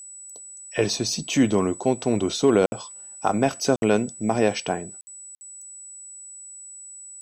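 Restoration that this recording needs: band-stop 7.9 kHz, Q 30; interpolate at 2.66/3.76/5.01/5.35 s, 60 ms

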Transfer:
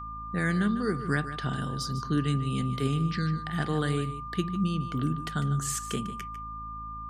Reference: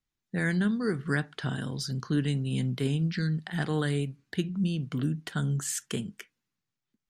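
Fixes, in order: de-hum 54.4 Hz, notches 5; band-stop 1.2 kHz, Q 30; inverse comb 149 ms -12.5 dB

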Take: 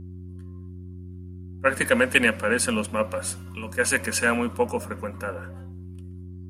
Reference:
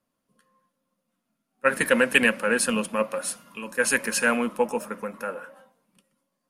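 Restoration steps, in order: de-hum 90.4 Hz, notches 4

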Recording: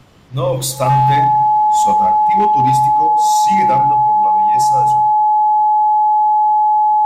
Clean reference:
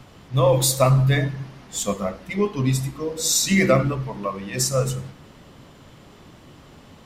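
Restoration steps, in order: clip repair -6.5 dBFS; band-stop 850 Hz, Q 30; gain correction +5 dB, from 3.07 s

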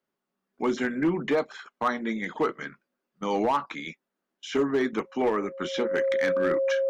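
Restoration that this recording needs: clip repair -18 dBFS; band-stop 540 Hz, Q 30

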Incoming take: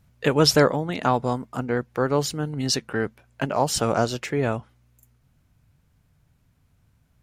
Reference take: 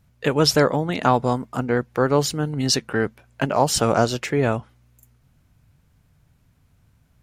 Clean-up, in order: gain correction +3.5 dB, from 0.72 s

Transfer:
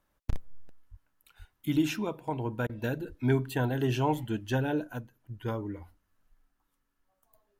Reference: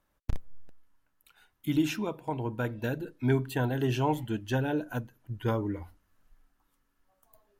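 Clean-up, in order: 0.90–1.02 s: high-pass 140 Hz 24 dB/octave; 1.38–1.50 s: high-pass 140 Hz 24 dB/octave; 3.08–3.20 s: high-pass 140 Hz 24 dB/octave; interpolate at 2.67 s, 22 ms; 4.87 s: gain correction +4.5 dB

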